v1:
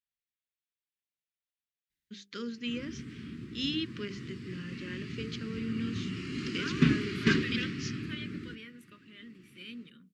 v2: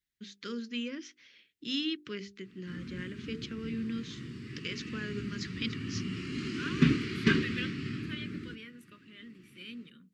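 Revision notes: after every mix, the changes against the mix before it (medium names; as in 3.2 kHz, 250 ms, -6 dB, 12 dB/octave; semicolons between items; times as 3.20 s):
first voice: entry -1.90 s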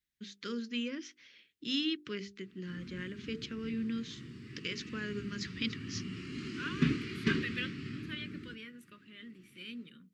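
background -5.0 dB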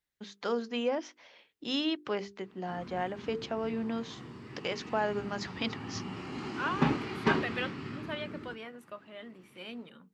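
master: remove Butterworth band-stop 750 Hz, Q 0.53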